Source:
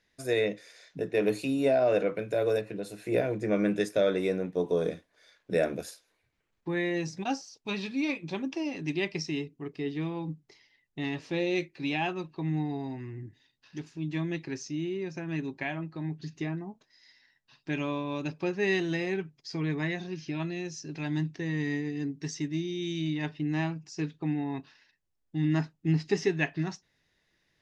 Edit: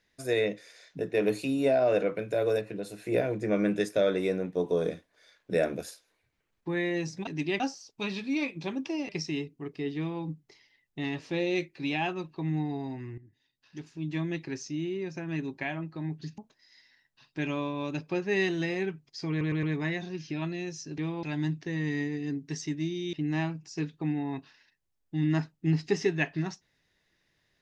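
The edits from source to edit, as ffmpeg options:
-filter_complex "[0:a]asplit=12[a][b][c][d][e][f][g][h][i][j][k][l];[a]atrim=end=7.272[m];[b]atrim=start=8.758:end=9.092[n];[c]atrim=start=7.268:end=8.762[o];[d]atrim=start=9.088:end=13.18,asetpts=PTS-STARTPTS,afade=t=out:st=4.088:d=0.004:c=hsin:silence=0.16788[p];[e]atrim=start=13.18:end=16.382,asetpts=PTS-STARTPTS,afade=t=in:d=0.93:silence=0.16788[q];[f]atrim=start=16.688:end=19.722[r];[g]atrim=start=19.608:end=19.722[s];[h]atrim=start=19.608:end=19.722[t];[i]atrim=start=19.608:end=20.962[u];[j]atrim=start=9.958:end=10.212[v];[k]atrim=start=20.958:end=22.862[w];[l]atrim=start=23.338[x];[m][n]acrossfade=d=0.004:c1=hsin:c2=hsin[y];[y][o]acrossfade=d=0.004:c1=hsin:c2=hsin[z];[p][q]concat=n=2:v=0:a=1[aa];[z][aa]acrossfade=d=0.004:c1=hsin:c2=hsin[ab];[ab][r]acrossfade=d=0.004:c1=hsin:c2=hsin[ac];[ac][s]acrossfade=d=0.004:c1=hsin:c2=hsin[ad];[ad][t]acrossfade=d=0.004:c1=hsin:c2=hsin[ae];[ae][u]acrossfade=d=0.004:c1=hsin:c2=hsin[af];[af][v]acrossfade=d=0.004:c1=hsin:c2=hsin[ag];[ag][w]acrossfade=d=0.004:c1=hsin:c2=hsin[ah];[ah][x]acrossfade=d=0.004:c1=hsin:c2=hsin"

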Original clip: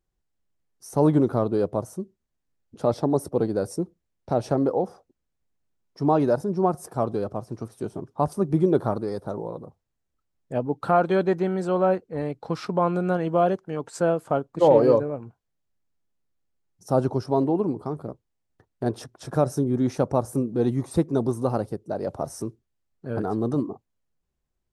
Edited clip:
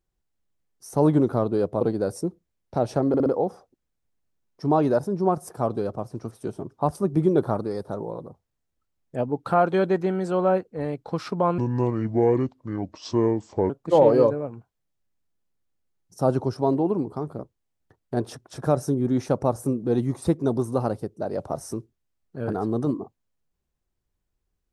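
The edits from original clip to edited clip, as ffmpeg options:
-filter_complex "[0:a]asplit=7[a][b][c][d][e][f][g];[a]atrim=end=1.812[h];[b]atrim=start=3.358:end=4.692[i];[c]atrim=start=4.628:end=4.692[j];[d]atrim=start=4.628:end=4.692[k];[e]atrim=start=4.628:end=12.954[l];[f]atrim=start=12.95:end=14.39,asetpts=PTS-STARTPTS,asetrate=29988,aresample=44100,atrim=end_sample=93388,asetpts=PTS-STARTPTS[m];[g]atrim=start=14.386[n];[h][i]acrossfade=d=0.004:c1=hsin:c2=hsin[o];[o][j]acrossfade=d=0.004:c1=hsin:c2=hsin[p];[p][k]acrossfade=d=0.004:c1=hsin:c2=hsin[q];[q][l]acrossfade=d=0.004:c1=hsin:c2=hsin[r];[r][m]acrossfade=d=0.004:c1=hsin:c2=hsin[s];[s][n]acrossfade=d=0.004:c1=hsin:c2=hsin"

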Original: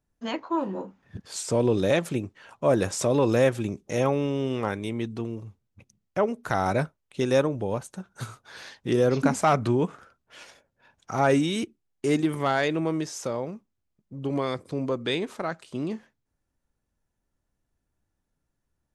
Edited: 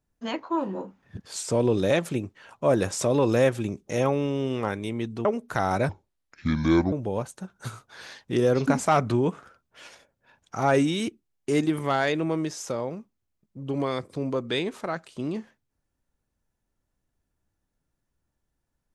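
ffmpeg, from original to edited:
-filter_complex "[0:a]asplit=4[a][b][c][d];[a]atrim=end=5.252[e];[b]atrim=start=6.198:end=6.844[f];[c]atrim=start=6.84:end=7.48,asetpts=PTS-STARTPTS,asetrate=27342,aresample=44100[g];[d]atrim=start=7.476[h];[e][f]acrossfade=d=0.004:c1=hsin:c2=hsin[i];[i][g]acrossfade=d=0.004:c1=hsin:c2=hsin[j];[j][h]acrossfade=d=0.004:c1=hsin:c2=hsin"

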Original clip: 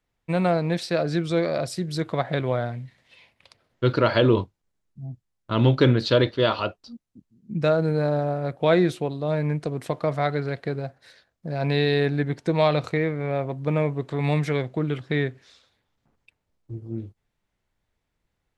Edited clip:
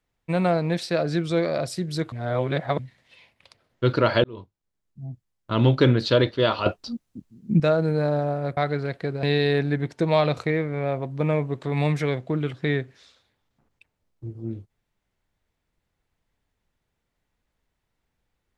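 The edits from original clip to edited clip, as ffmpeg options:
-filter_complex "[0:a]asplit=8[a][b][c][d][e][f][g][h];[a]atrim=end=2.122[i];[b]atrim=start=2.118:end=2.792,asetpts=PTS-STARTPTS,areverse[j];[c]atrim=start=2.788:end=4.24,asetpts=PTS-STARTPTS,afade=t=out:st=1.448:d=0.004:c=hsin[k];[d]atrim=start=4.24:end=6.662,asetpts=PTS-STARTPTS,afade=t=in:d=0.83[l];[e]atrim=start=6.658:end=7.602,asetpts=PTS-STARTPTS,volume=9.5dB[m];[f]atrim=start=7.598:end=8.572[n];[g]atrim=start=10.198:end=10.862[o];[h]atrim=start=11.698[p];[i][j]acrossfade=d=0.004:c1=hsin:c2=hsin[q];[k][l]concat=n=2:v=0:a=1[r];[q][r]acrossfade=d=0.004:c1=hsin:c2=hsin[s];[s][m]acrossfade=d=0.004:c1=hsin:c2=hsin[t];[t][n]acrossfade=d=0.004:c1=hsin:c2=hsin[u];[u][o]acrossfade=d=0.004:c1=hsin:c2=hsin[v];[v][p]acrossfade=d=0.004:c1=hsin:c2=hsin"

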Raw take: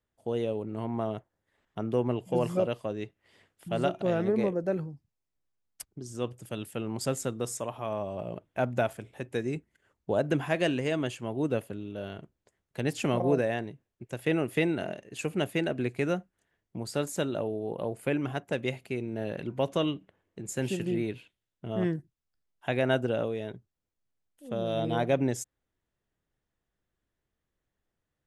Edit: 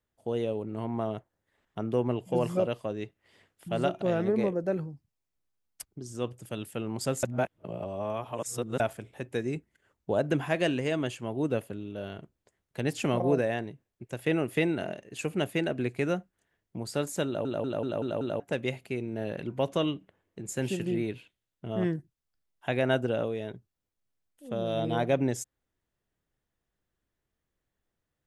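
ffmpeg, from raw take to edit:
-filter_complex "[0:a]asplit=9[a][b][c][d][e][f][g][h][i];[a]atrim=end=7.232[j];[b]atrim=start=7.228:end=8.802,asetpts=PTS-STARTPTS,areverse[k];[c]atrim=start=8.798:end=17.452[l];[d]atrim=start=17.258:end=17.452[m];[e]atrim=start=17.258:end=17.452[n];[f]atrim=start=17.258:end=17.452[o];[g]atrim=start=17.258:end=17.452[p];[h]atrim=start=17.258:end=17.452[q];[i]atrim=start=18.398[r];[j][k]acrossfade=d=0.004:c1=hsin:c2=hsin[s];[s][l]acrossfade=d=0.004:c1=hsin:c2=hsin[t];[t][m]acrossfade=d=0.004:c1=hsin:c2=hsin[u];[u][n]acrossfade=d=0.004:c1=hsin:c2=hsin[v];[v][o]acrossfade=d=0.004:c1=hsin:c2=hsin[w];[w][p]acrossfade=d=0.004:c1=hsin:c2=hsin[x];[x][q]acrossfade=d=0.004:c1=hsin:c2=hsin[y];[y][r]acrossfade=d=0.004:c1=hsin:c2=hsin"

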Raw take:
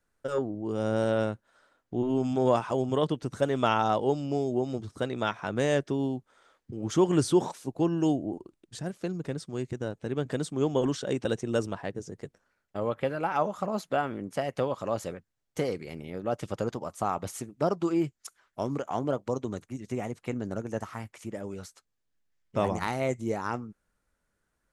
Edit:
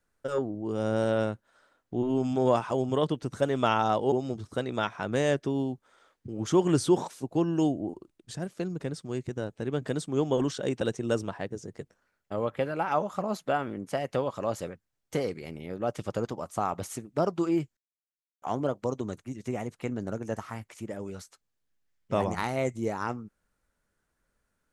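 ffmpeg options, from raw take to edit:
-filter_complex "[0:a]asplit=4[a][b][c][d];[a]atrim=end=4.122[e];[b]atrim=start=4.558:end=18.21,asetpts=PTS-STARTPTS,afade=t=out:st=13.648:d=0.004:c=hsin[f];[c]atrim=start=18.21:end=18.86,asetpts=PTS-STARTPTS,volume=0[g];[d]atrim=start=18.86,asetpts=PTS-STARTPTS,afade=t=in:d=0.004:c=hsin[h];[f][g][h]concat=n=3:v=0:a=1[i];[e][i]acrossfade=d=0.004:c1=hsin:c2=hsin"

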